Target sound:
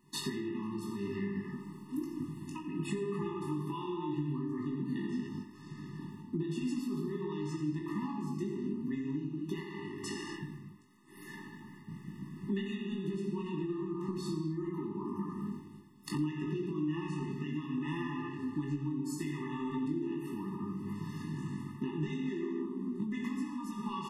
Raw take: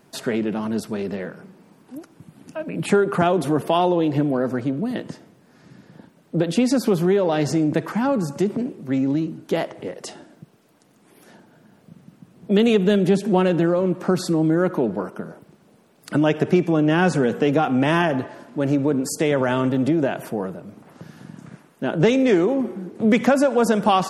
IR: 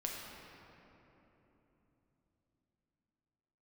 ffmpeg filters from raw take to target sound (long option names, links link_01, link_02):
-filter_complex "[0:a]agate=range=-10dB:threshold=-53dB:ratio=16:detection=peak,asettb=1/sr,asplit=3[link_01][link_02][link_03];[link_01]atrim=end=10.074[link_04];[link_02]atrim=start=10.07:end=12.8,asetpts=PTS-STARTPTS,afade=type=in:duration=0.004:curve=qsin,afade=type=out:start_time=2.726:duration=0.004:curve=qsin,equalizer=frequency=1800:width_type=o:width=0.62:gain=7.5[link_05];[link_03]atrim=start=12.796[link_06];[link_04][link_05]acrossfade=duration=0.004:curve1=hsin:curve2=qsin[link_07];[link_07][link_06]acrossfade=duration=0.004:curve1=qsin:curve2=hsin[link_08];[1:a]atrim=start_sample=2205,afade=type=out:start_time=0.34:duration=0.01,atrim=end_sample=15435[link_09];[link_08][link_09]afir=irnorm=-1:irlink=0,acompressor=threshold=-34dB:ratio=16,asplit=2[link_10][link_11];[link_11]adelay=20,volume=-5.5dB[link_12];[link_10][link_12]amix=inputs=2:normalize=0,aecho=1:1:89:0.15,afftfilt=real='re*eq(mod(floor(b*sr/1024/420),2),0)':imag='im*eq(mod(floor(b*sr/1024/420),2),0)':win_size=1024:overlap=0.75,volume=1.5dB"